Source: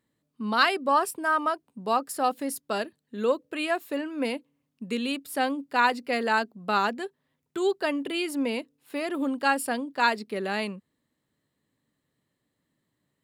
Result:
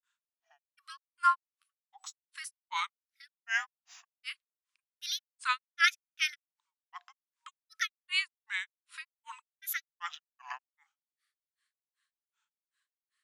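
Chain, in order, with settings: frequency shift -240 Hz; FFT band-pass 950–10000 Hz; grains 0.207 s, grains 2.6/s, pitch spread up and down by 7 st; gain +4.5 dB

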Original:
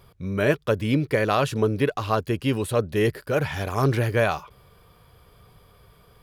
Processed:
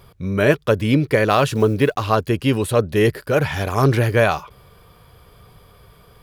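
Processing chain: 1.3–2.04 block floating point 7-bit; gain +5.5 dB

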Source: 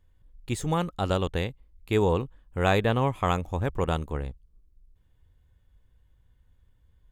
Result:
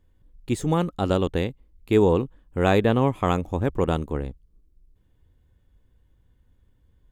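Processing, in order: bell 290 Hz +8 dB 1.7 oct

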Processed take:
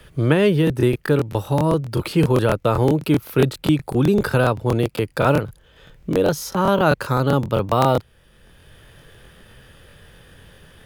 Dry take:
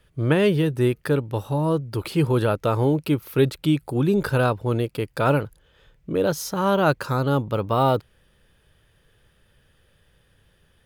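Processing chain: crackling interface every 0.13 s, samples 1024, repeat, from 0.65; three-band squash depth 40%; gain +3 dB

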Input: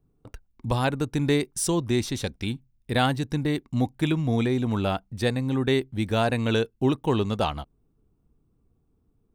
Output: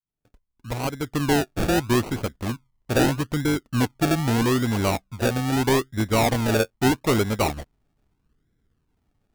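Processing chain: opening faded in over 1.51 s; dynamic EQ 170 Hz, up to -3 dB, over -38 dBFS, Q 1.9; decimation with a swept rate 34×, swing 60% 0.79 Hz; soft clip -19 dBFS, distortion -15 dB; upward expander 1.5:1, over -42 dBFS; gain +7 dB

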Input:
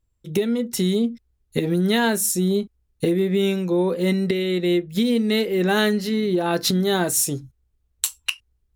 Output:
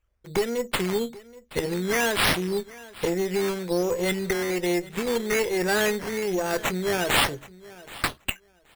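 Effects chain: graphic EQ 125/250/500/1000/2000/4000/8000 Hz -7/-12/+4/-7/+7/-12/+7 dB; in parallel at -2.5 dB: vocal rider within 3 dB 2 s; on the sum: tube stage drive 12 dB, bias 0.6; decimation with a swept rate 9×, swing 60% 1.2 Hz; feedback echo 0.776 s, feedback 16%, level -20 dB; gain -2.5 dB

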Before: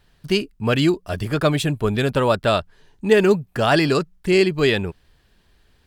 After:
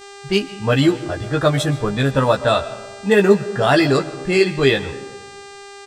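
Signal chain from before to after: spectral noise reduction 10 dB; low-pass opened by the level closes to 2500 Hz, open at -15 dBFS; bit-crush 12-bit; buzz 400 Hz, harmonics 22, -44 dBFS -4 dB/oct; doubler 15 ms -4 dB; digital reverb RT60 1.3 s, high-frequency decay 0.35×, pre-delay 90 ms, DRR 15 dB; gain +1 dB

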